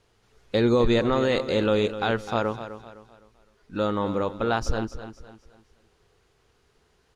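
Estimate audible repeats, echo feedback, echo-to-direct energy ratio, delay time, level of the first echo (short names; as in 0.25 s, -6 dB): 3, 37%, -11.5 dB, 0.255 s, -12.0 dB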